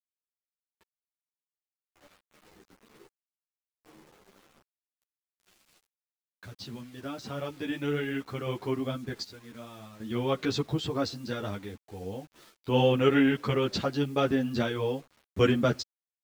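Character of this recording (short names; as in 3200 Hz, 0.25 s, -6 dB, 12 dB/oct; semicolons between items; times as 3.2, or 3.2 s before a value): random-step tremolo 1.3 Hz, depth 90%; a quantiser's noise floor 10-bit, dither none; a shimmering, thickened sound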